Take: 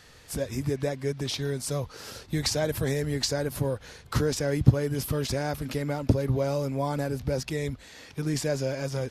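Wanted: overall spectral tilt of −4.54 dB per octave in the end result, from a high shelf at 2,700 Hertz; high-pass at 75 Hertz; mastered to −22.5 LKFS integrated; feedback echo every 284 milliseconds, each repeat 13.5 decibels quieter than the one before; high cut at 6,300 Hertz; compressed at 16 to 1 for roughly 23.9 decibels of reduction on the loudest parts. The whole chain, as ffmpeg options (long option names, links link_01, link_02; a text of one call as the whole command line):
ffmpeg -i in.wav -af "highpass=75,lowpass=6300,highshelf=frequency=2700:gain=5.5,acompressor=threshold=-36dB:ratio=16,aecho=1:1:284|568:0.211|0.0444,volume=18.5dB" out.wav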